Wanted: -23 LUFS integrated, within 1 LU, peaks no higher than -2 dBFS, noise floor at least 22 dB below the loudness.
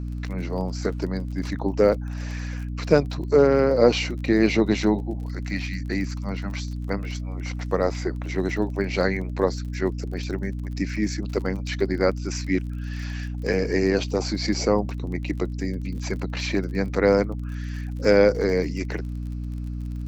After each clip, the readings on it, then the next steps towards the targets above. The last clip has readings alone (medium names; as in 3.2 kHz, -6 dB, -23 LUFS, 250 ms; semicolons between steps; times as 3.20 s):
tick rate 32 per s; hum 60 Hz; highest harmonic 300 Hz; hum level -28 dBFS; loudness -25.0 LUFS; peak level -3.5 dBFS; loudness target -23.0 LUFS
-> de-click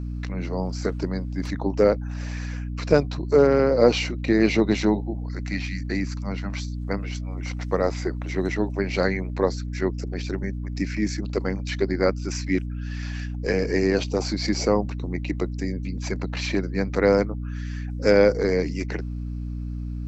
tick rate 0 per s; hum 60 Hz; highest harmonic 300 Hz; hum level -28 dBFS
-> hum notches 60/120/180/240/300 Hz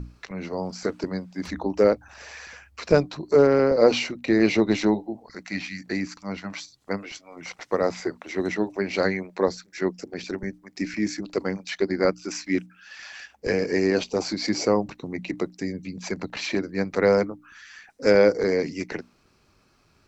hum not found; loudness -25.0 LUFS; peak level -4.5 dBFS; loudness target -23.0 LUFS
-> trim +2 dB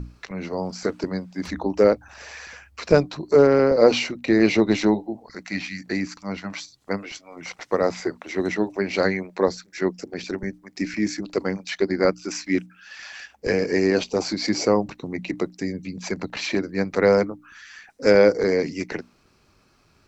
loudness -23.0 LUFS; peak level -2.5 dBFS; noise floor -60 dBFS